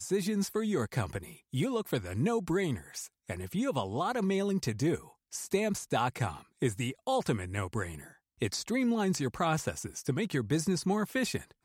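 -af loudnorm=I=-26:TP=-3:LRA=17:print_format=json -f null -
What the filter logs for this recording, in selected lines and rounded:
"input_i" : "-32.2",
"input_tp" : "-16.0",
"input_lra" : "1.8",
"input_thresh" : "-42.4",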